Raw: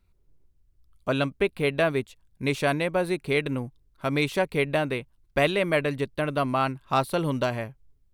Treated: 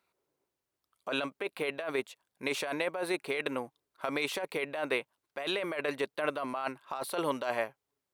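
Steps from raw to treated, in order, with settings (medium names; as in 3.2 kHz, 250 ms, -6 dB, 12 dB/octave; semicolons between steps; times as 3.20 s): high-pass 700 Hz 12 dB/octave; tilt shelf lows +4.5 dB, about 1.1 kHz; compressor with a negative ratio -32 dBFS, ratio -1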